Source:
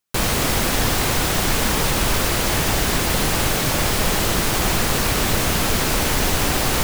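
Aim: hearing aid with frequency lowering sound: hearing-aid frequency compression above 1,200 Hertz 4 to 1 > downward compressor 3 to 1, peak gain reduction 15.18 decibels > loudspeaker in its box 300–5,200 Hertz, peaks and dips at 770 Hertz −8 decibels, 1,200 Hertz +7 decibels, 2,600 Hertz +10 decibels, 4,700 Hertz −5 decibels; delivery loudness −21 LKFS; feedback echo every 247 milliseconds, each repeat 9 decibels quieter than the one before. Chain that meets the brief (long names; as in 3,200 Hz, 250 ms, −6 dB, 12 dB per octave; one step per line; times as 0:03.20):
repeating echo 247 ms, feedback 35%, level −9 dB
hearing-aid frequency compression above 1,200 Hz 4 to 1
downward compressor 3 to 1, threshold −32 dBFS
loudspeaker in its box 300–5,200 Hz, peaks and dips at 770 Hz −8 dB, 1,200 Hz +7 dB, 2,600 Hz +10 dB, 4,700 Hz −5 dB
level +3.5 dB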